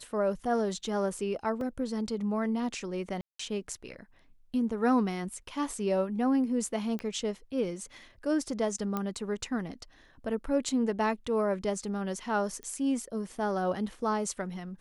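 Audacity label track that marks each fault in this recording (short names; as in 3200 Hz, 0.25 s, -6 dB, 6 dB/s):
1.610000	1.610000	gap 2.2 ms
3.210000	3.390000	gap 0.184 s
6.990000	6.990000	pop -23 dBFS
8.970000	8.970000	pop -18 dBFS
12.630000	12.630000	pop -28 dBFS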